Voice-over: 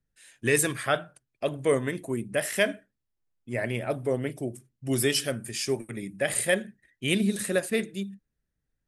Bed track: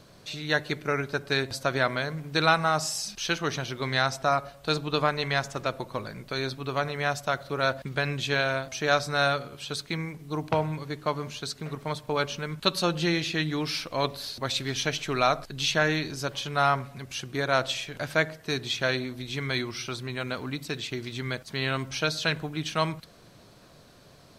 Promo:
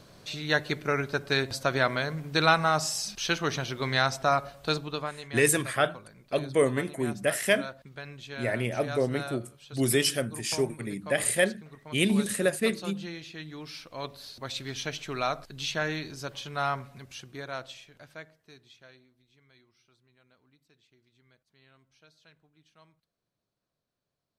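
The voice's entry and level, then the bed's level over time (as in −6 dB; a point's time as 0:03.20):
4.90 s, +0.5 dB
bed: 0:04.66 0 dB
0:05.24 −14 dB
0:13.34 −14 dB
0:14.66 −6 dB
0:16.96 −6 dB
0:19.35 −33 dB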